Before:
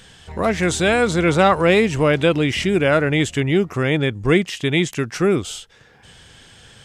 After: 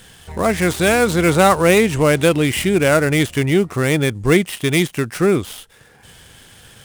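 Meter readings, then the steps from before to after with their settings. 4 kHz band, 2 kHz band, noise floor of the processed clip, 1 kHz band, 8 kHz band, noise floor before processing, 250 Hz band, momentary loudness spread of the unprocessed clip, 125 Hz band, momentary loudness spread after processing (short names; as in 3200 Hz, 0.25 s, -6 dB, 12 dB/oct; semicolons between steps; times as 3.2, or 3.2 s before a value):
+1.0 dB, +1.5 dB, -49 dBFS, +2.0 dB, +5.5 dB, -50 dBFS, +2.0 dB, 7 LU, +2.0 dB, 6 LU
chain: switching dead time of 0.062 ms; bell 9200 Hz +7.5 dB 0.51 oct; gain +2 dB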